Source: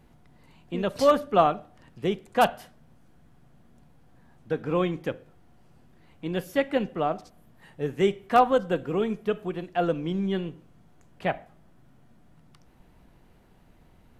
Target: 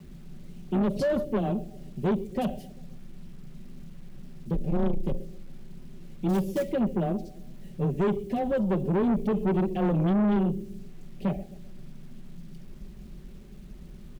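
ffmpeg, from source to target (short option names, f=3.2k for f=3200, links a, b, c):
-filter_complex "[0:a]asettb=1/sr,asplit=3[a][b][c];[a]atrim=end=4.534[d];[b]atrim=start=4.53:end=5.11,asetpts=PTS-STARTPTS,afade=t=in:d=0.004:c=qsin,afade=t=out:st=0.576:d=0.004:c=qsin,aeval=exprs='max(val(0),0)':c=same[e];[c]atrim=start=5.106[f];[d][e]acrossfade=d=0.004:c1=hsin:c2=qsin[g];[g][f]acrossfade=d=0.004:c1=qsin:c2=hsin,asettb=1/sr,asplit=3[h][i][j];[h]atrim=end=8.974[k];[i]atrim=start=8.97:end=10.13,asetpts=PTS-STARTPTS,afade=t=in:d=0.004:c=qsin,afade=t=out:st=1.156:d=0.004:c=qsin,acontrast=24[l];[j]atrim=start=10.126[m];[k][l]acrossfade=d=0.004:c1=hsin:c2=qsin[n];[n][m]acrossfade=d=0.004:c1=qsin:c2=hsin,tiltshelf=f=970:g=7,asplit=3[o][p][q];[o]afade=t=out:st=6.28:d=0.02[r];[p]acrusher=bits=5:mode=log:mix=0:aa=0.000001,afade=t=in:st=6.28:d=0.02,afade=t=out:st=6.71:d=0.02[s];[q]afade=t=in:st=6.71:d=0.02[t];[r][s][t]amix=inputs=3:normalize=0,alimiter=limit=-14.5dB:level=0:latency=1:release=39,lowshelf=f=210:g=4.5,afreqshift=14,asuperstop=centerf=1200:order=4:qfactor=0.59,aecho=1:1:5.2:0.81,asplit=2[u][v];[v]adelay=130,lowpass=f=3.1k:p=1,volume=-21dB,asplit=2[w][x];[x]adelay=130,lowpass=f=3.1k:p=1,volume=0.49,asplit=2[y][z];[z]adelay=130,lowpass=f=3.1k:p=1,volume=0.49,asplit=2[aa][ab];[ab]adelay=130,lowpass=f=3.1k:p=1,volume=0.49[ac];[u][w][y][aa][ac]amix=inputs=5:normalize=0,acrusher=bits=9:mix=0:aa=0.000001,asoftclip=type=tanh:threshold=-21dB"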